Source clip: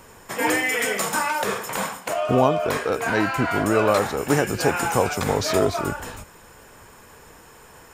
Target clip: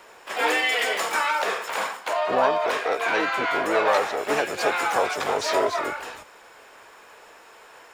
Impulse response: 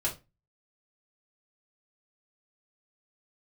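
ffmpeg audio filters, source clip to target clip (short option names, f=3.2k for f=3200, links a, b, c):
-filter_complex "[0:a]asplit=2[a][b];[b]asetrate=66075,aresample=44100,atempo=0.66742,volume=-5dB[c];[a][c]amix=inputs=2:normalize=0,asoftclip=type=tanh:threshold=-9.5dB,acrossover=split=360 6100:gain=0.0794 1 0.251[d][e][f];[d][e][f]amix=inputs=3:normalize=0"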